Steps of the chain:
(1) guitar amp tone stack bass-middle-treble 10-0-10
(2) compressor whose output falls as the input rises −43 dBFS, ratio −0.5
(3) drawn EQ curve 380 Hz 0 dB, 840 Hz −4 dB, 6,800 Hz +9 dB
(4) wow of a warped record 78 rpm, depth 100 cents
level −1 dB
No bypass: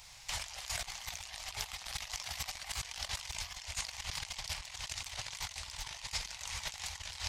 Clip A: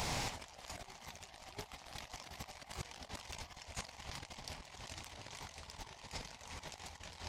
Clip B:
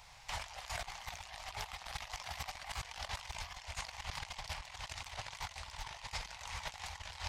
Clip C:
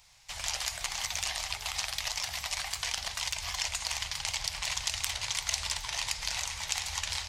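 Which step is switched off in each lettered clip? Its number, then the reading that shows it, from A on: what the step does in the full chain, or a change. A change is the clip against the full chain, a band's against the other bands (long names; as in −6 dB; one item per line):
1, 250 Hz band +13.0 dB
3, change in crest factor −3.0 dB
2, change in crest factor +7.0 dB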